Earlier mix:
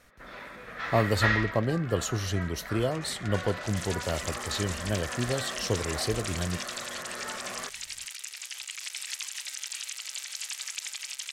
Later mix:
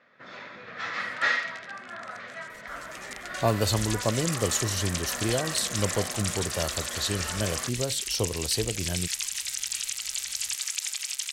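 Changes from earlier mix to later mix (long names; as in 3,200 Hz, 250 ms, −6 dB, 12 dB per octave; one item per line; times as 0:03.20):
speech: entry +2.50 s
master: add high-shelf EQ 4,200 Hz +8.5 dB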